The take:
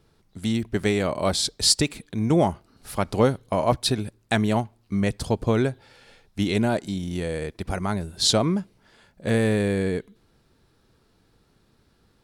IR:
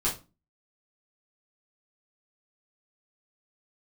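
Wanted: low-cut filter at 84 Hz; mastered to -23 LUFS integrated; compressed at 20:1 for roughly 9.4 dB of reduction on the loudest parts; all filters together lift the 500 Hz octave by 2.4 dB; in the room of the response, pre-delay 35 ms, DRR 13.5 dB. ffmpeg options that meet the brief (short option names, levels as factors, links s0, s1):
-filter_complex "[0:a]highpass=84,equalizer=f=500:t=o:g=3,acompressor=threshold=0.0891:ratio=20,asplit=2[s0][s1];[1:a]atrim=start_sample=2205,adelay=35[s2];[s1][s2]afir=irnorm=-1:irlink=0,volume=0.0794[s3];[s0][s3]amix=inputs=2:normalize=0,volume=1.78"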